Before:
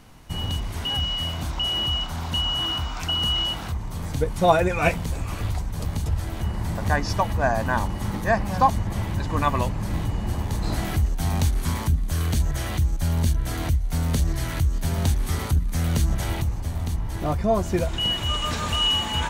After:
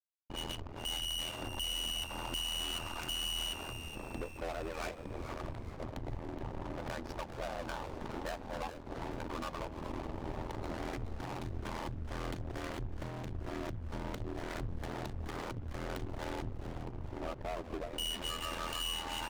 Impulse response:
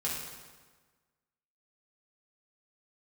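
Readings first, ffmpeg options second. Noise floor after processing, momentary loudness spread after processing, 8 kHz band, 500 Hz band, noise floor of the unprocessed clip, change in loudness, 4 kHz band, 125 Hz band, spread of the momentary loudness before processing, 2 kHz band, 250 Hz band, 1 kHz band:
−47 dBFS, 8 LU, −10.0 dB, −14.0 dB, −31 dBFS, −15.5 dB, −13.5 dB, −20.0 dB, 7 LU, −13.5 dB, −14.0 dB, −15.5 dB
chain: -filter_complex "[0:a]anlmdn=10,lowshelf=frequency=240:width_type=q:width=1.5:gain=-11.5,aecho=1:1:3.4:0.4,acompressor=threshold=-28dB:ratio=12,acrusher=bits=7:mix=0:aa=0.000001,adynamicsmooth=sensitivity=5.5:basefreq=590,aeval=exprs='sgn(val(0))*max(abs(val(0))-0.00282,0)':channel_layout=same,aeval=exprs='(tanh(70.8*val(0)+0.6)-tanh(0.6))/70.8':channel_layout=same,aeval=exprs='val(0)*sin(2*PI*41*n/s)':channel_layout=same,asplit=6[link_01][link_02][link_03][link_04][link_05][link_06];[link_02]adelay=423,afreqshift=-120,volume=-10.5dB[link_07];[link_03]adelay=846,afreqshift=-240,volume=-16.7dB[link_08];[link_04]adelay=1269,afreqshift=-360,volume=-22.9dB[link_09];[link_05]adelay=1692,afreqshift=-480,volume=-29.1dB[link_10];[link_06]adelay=2115,afreqshift=-600,volume=-35.3dB[link_11];[link_01][link_07][link_08][link_09][link_10][link_11]amix=inputs=6:normalize=0,adynamicequalizer=threshold=0.00251:dfrequency=3200:dqfactor=0.7:tfrequency=3200:tqfactor=0.7:attack=5:release=100:ratio=0.375:range=1.5:mode=boostabove:tftype=highshelf,volume=3dB"

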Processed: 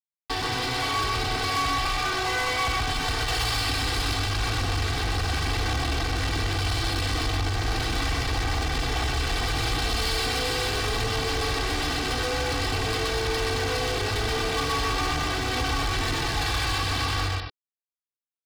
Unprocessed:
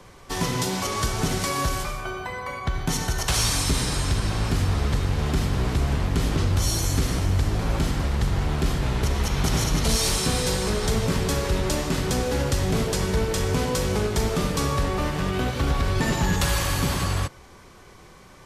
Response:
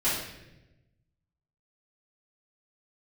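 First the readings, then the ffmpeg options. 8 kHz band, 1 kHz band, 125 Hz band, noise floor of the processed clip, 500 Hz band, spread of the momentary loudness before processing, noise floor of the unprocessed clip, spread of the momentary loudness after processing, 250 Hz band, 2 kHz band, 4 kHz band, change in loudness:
−5.0 dB, +2.5 dB, −5.0 dB, below −85 dBFS, −3.0 dB, 4 LU, −48 dBFS, 2 LU, −6.5 dB, +4.0 dB, +3.0 dB, −1.5 dB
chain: -af "acompressor=threshold=-31dB:ratio=5,lowshelf=frequency=64:gain=-8,aresample=11025,acrusher=bits=5:mix=0:aa=0.000001,aresample=44100,dynaudnorm=framelen=420:gausssize=9:maxgain=3dB,aecho=1:1:125.4|221.6:0.891|0.355,volume=32dB,asoftclip=hard,volume=-32dB,equalizer=frequency=390:width=6.5:gain=-11,aecho=1:1:2.6:0.93,volume=6dB"

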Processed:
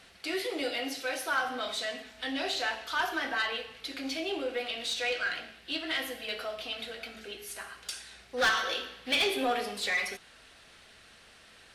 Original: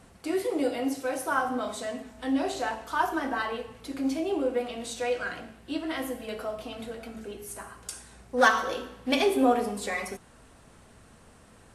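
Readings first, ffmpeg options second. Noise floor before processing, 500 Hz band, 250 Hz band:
−55 dBFS, −6.5 dB, −10.0 dB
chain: -filter_complex "[0:a]equalizer=frequency=125:width_type=o:width=1:gain=-7,equalizer=frequency=250:width_type=o:width=1:gain=-8,equalizer=frequency=500:width_type=o:width=1:gain=-6,equalizer=frequency=1000:width_type=o:width=1:gain=-12,equalizer=frequency=4000:width_type=o:width=1:gain=5,equalizer=frequency=8000:width_type=o:width=1:gain=-8,asplit=2[link_01][link_02];[link_02]highpass=frequency=720:poles=1,volume=20dB,asoftclip=type=tanh:threshold=-12dB[link_03];[link_01][link_03]amix=inputs=2:normalize=0,lowpass=frequency=4900:poles=1,volume=-6dB,volume=-5dB"

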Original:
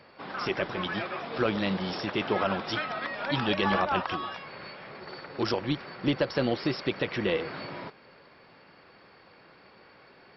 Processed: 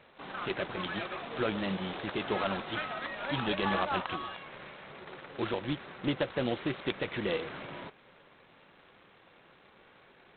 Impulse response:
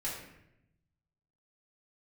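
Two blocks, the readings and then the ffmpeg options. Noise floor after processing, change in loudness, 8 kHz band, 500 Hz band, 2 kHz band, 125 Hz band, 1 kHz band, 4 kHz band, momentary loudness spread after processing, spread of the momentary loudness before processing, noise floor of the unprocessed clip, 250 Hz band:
−60 dBFS, −4.5 dB, can't be measured, −4.5 dB, −4.0 dB, −4.5 dB, −4.0 dB, −4.5 dB, 14 LU, 14 LU, −56 dBFS, −4.5 dB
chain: -af "volume=-4.5dB" -ar 8000 -c:a adpcm_g726 -b:a 16k

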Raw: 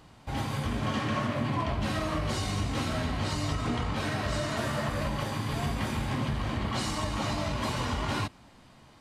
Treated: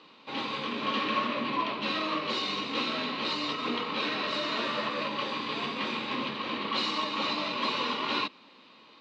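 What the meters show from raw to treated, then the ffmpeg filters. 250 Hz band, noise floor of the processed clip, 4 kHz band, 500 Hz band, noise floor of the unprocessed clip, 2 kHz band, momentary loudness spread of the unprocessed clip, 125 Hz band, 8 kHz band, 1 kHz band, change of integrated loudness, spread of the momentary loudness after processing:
−2.5 dB, −56 dBFS, +6.5 dB, −0.5 dB, −55 dBFS, +3.0 dB, 2 LU, −18.0 dB, −11.0 dB, +2.5 dB, +0.5 dB, 3 LU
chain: -af "highpass=frequency=230:width=0.5412,highpass=frequency=230:width=1.3066,equalizer=frequency=480:width_type=q:width=4:gain=5,equalizer=frequency=710:width_type=q:width=4:gain=-9,equalizer=frequency=1100:width_type=q:width=4:gain=6,equalizer=frequency=1600:width_type=q:width=4:gain=-3,equalizer=frequency=2600:width_type=q:width=4:gain=9,equalizer=frequency=3900:width_type=q:width=4:gain=10,lowpass=frequency=4900:width=0.5412,lowpass=frequency=4900:width=1.3066"

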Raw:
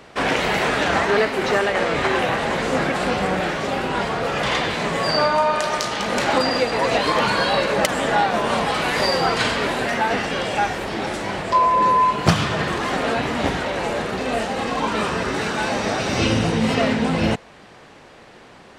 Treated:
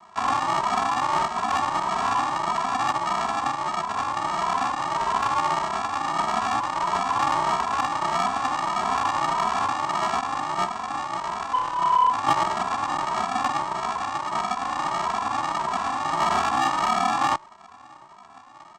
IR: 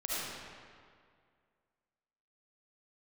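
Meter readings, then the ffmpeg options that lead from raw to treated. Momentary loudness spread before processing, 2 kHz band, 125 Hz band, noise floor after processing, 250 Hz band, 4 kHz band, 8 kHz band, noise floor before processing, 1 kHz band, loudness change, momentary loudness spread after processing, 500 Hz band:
5 LU, −9.0 dB, −13.5 dB, −48 dBFS, −12.0 dB, −9.0 dB, −4.0 dB, −45 dBFS, 0.0 dB, −4.0 dB, 5 LU, −12.5 dB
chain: -filter_complex "[0:a]acontrast=66,equalizer=frequency=600:width_type=o:width=1.3:gain=-8.5,aresample=16000,acrusher=samples=31:mix=1:aa=0.000001,aresample=44100,aeval=exprs='val(0)*sin(2*PI*1000*n/s)':channel_layout=same,asoftclip=type=tanh:threshold=-9.5dB,asplit=2[link_01][link_02];[link_02]adelay=2.7,afreqshift=1.6[link_03];[link_01][link_03]amix=inputs=2:normalize=1"

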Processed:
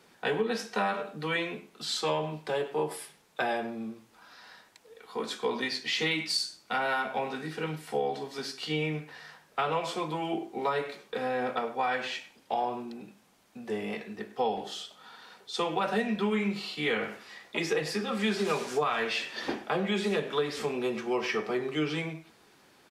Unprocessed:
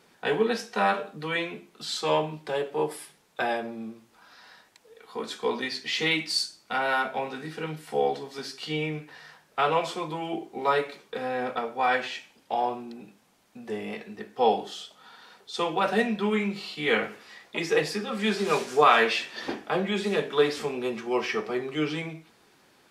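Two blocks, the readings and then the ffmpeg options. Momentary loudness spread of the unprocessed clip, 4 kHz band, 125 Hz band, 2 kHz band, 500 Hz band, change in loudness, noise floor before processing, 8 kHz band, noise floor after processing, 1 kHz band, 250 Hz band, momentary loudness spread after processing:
13 LU, −2.5 dB, −1.0 dB, −3.5 dB, −4.0 dB, −4.0 dB, −62 dBFS, −1.5 dB, −62 dBFS, −5.0 dB, −2.0 dB, 11 LU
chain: -filter_complex "[0:a]asplit=2[link_01][link_02];[link_02]adelay=100,highpass=300,lowpass=3400,asoftclip=type=hard:threshold=-15dB,volume=-16dB[link_03];[link_01][link_03]amix=inputs=2:normalize=0,acrossover=split=160[link_04][link_05];[link_05]acompressor=threshold=-25dB:ratio=10[link_06];[link_04][link_06]amix=inputs=2:normalize=0"

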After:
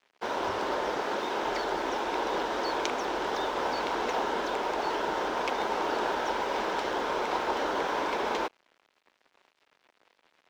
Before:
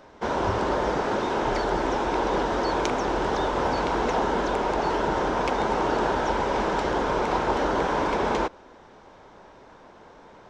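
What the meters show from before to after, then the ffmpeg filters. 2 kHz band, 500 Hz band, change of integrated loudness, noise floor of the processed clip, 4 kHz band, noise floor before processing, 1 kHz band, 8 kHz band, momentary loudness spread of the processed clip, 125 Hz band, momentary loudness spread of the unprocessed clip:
−3.0 dB, −6.0 dB, −5.0 dB, −73 dBFS, −0.5 dB, −50 dBFS, −4.5 dB, −3.0 dB, 2 LU, −17.0 dB, 1 LU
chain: -filter_complex "[0:a]aeval=exprs='sgn(val(0))*max(abs(val(0))-0.00562,0)':channel_layout=same,crystalizer=i=3.5:c=0,acrossover=split=250 4600:gain=0.2 1 0.2[link_01][link_02][link_03];[link_01][link_02][link_03]amix=inputs=3:normalize=0,volume=-5dB"

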